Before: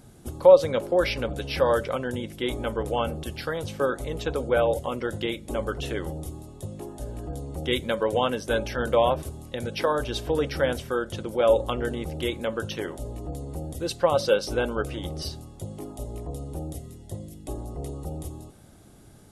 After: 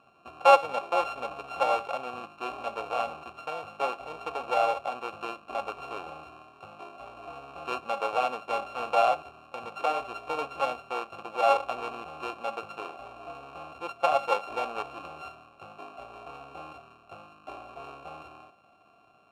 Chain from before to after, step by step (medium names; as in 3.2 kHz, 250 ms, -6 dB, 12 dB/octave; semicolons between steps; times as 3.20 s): sorted samples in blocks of 32 samples; vowel filter a; trim +7.5 dB